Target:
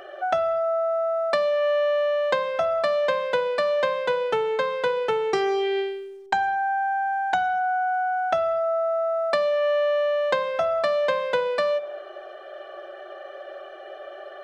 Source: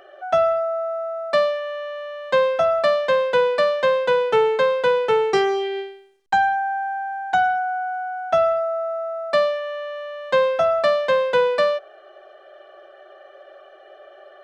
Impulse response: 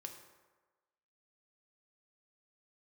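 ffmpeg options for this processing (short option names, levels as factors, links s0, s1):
-filter_complex "[0:a]acompressor=threshold=0.0447:ratio=6,asplit=2[s0][s1];[1:a]atrim=start_sample=2205[s2];[s1][s2]afir=irnorm=-1:irlink=0,volume=0.841[s3];[s0][s3]amix=inputs=2:normalize=0,volume=1.33"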